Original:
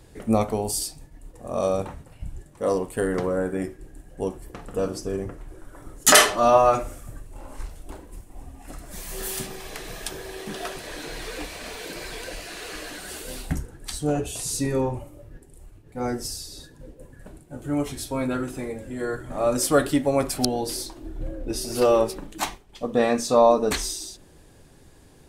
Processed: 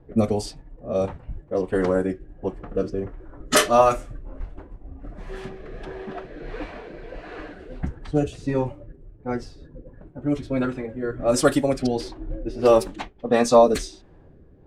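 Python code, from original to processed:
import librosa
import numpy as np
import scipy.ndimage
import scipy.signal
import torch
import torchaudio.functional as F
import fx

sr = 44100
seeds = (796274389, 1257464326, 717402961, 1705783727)

y = fx.rotary(x, sr, hz=0.85)
y = fx.stretch_vocoder(y, sr, factor=0.58)
y = fx.env_lowpass(y, sr, base_hz=1000.0, full_db=-18.5)
y = F.gain(torch.from_numpy(y), 4.5).numpy()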